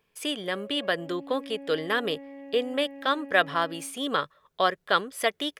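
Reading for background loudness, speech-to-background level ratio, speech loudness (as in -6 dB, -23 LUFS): -44.0 LUFS, 16.0 dB, -28.0 LUFS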